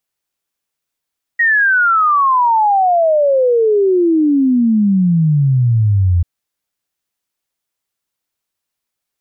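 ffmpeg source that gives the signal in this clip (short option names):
-f lavfi -i "aevalsrc='0.355*clip(min(t,4.84-t)/0.01,0,1)*sin(2*PI*1900*4.84/log(84/1900)*(exp(log(84/1900)*t/4.84)-1))':d=4.84:s=44100"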